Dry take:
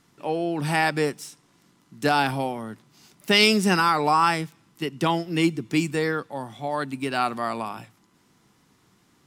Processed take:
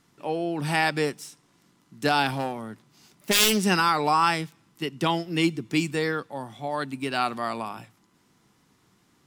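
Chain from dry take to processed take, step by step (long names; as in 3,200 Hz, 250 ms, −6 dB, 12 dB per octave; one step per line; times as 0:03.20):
0:02.32–0:03.60: phase distortion by the signal itself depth 0.4 ms
dynamic equaliser 3,600 Hz, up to +4 dB, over −38 dBFS, Q 1.1
level −2 dB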